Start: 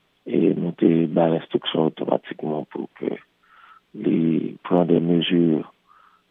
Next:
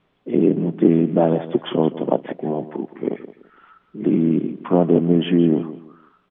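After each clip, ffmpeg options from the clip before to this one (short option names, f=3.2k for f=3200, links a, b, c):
-af "lowpass=f=1.2k:p=1,aecho=1:1:168|336|504:0.188|0.049|0.0127,volume=2.5dB"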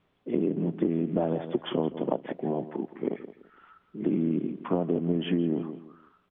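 -af "acompressor=threshold=-16dB:ratio=10,equalizer=f=81:w=6.3:g=12.5,volume=-5.5dB"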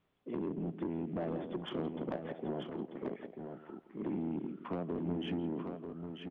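-filter_complex "[0:a]asoftclip=type=tanh:threshold=-22.5dB,asplit=2[a][b];[b]aecho=0:1:940:0.473[c];[a][c]amix=inputs=2:normalize=0,volume=-7.5dB"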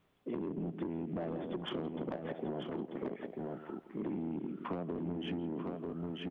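-af "acompressor=threshold=-40dB:ratio=6,volume=5dB"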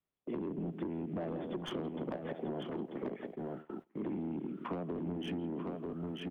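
-filter_complex "[0:a]agate=range=-21dB:threshold=-46dB:ratio=16:detection=peak,acrossover=split=200|350|1400[a][b][c][d];[d]aeval=exprs='clip(val(0),-1,0.00668)':c=same[e];[a][b][c][e]amix=inputs=4:normalize=0"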